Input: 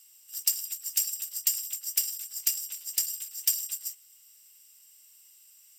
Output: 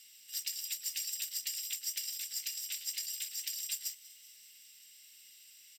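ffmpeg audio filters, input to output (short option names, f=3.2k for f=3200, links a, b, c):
-filter_complex "[0:a]equalizer=f=250:t=o:w=1:g=10,equalizer=f=500:t=o:w=1:g=7,equalizer=f=1k:t=o:w=1:g=-9,equalizer=f=2k:t=o:w=1:g=12,equalizer=f=4k:t=o:w=1:g=12,alimiter=limit=-19.5dB:level=0:latency=1:release=234,asplit=6[a][b][c][d][e][f];[b]adelay=191,afreqshift=130,volume=-19.5dB[g];[c]adelay=382,afreqshift=260,volume=-23.8dB[h];[d]adelay=573,afreqshift=390,volume=-28.1dB[i];[e]adelay=764,afreqshift=520,volume=-32.4dB[j];[f]adelay=955,afreqshift=650,volume=-36.7dB[k];[a][g][h][i][j][k]amix=inputs=6:normalize=0,volume=-4.5dB"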